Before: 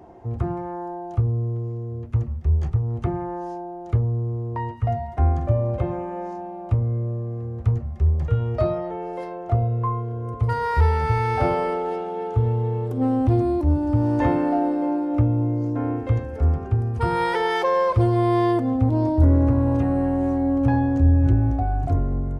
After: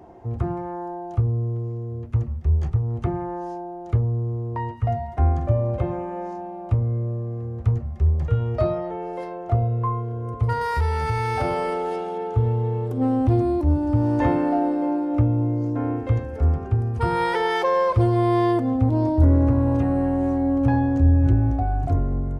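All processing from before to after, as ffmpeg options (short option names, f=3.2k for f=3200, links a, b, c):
-filter_complex "[0:a]asettb=1/sr,asplit=3[a][b][c];[a]atrim=end=10.614[d];[b]atrim=start=10.61:end=12.18,asetpts=PTS-STARTPTS,afade=t=in:d=0.004:c=qsin,afade=t=out:st=1.566:d=0.004:c=qsin,highshelf=f=4.1k:g=10,acompressor=threshold=-21dB:ratio=2:attack=3.2:release=140:knee=1:detection=peak[e];[c]atrim=start=12.176[f];[d][e]acrossfade=d=0.004:c1=hsin:c2=qsin[g];[g][f]acrossfade=d=0.004:c1=qsin:c2=hsin"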